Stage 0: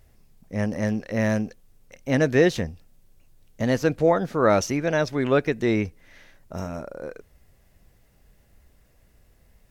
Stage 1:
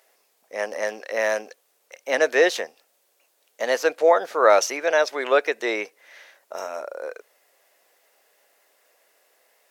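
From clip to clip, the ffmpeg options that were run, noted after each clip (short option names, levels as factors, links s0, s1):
-af "highpass=f=480:w=0.5412,highpass=f=480:w=1.3066,volume=1.78"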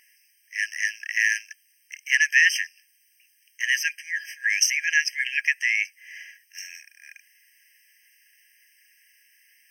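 -af "afftfilt=real='re*eq(mod(floor(b*sr/1024/1600),2),1)':imag='im*eq(mod(floor(b*sr/1024/1600),2),1)':win_size=1024:overlap=0.75,volume=2.24"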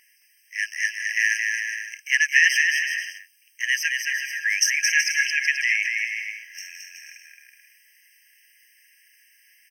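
-af "aecho=1:1:220|374|481.8|557.3|610.1:0.631|0.398|0.251|0.158|0.1"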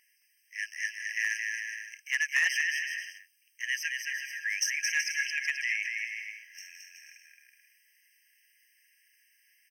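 -af "asoftclip=type=hard:threshold=0.316,volume=0.355"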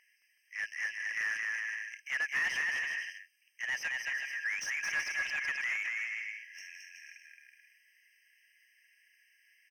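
-filter_complex "[0:a]asplit=2[s0][s1];[s1]highpass=f=720:p=1,volume=6.31,asoftclip=type=tanh:threshold=0.119[s2];[s0][s2]amix=inputs=2:normalize=0,lowpass=f=1400:p=1,volume=0.501,volume=0.668"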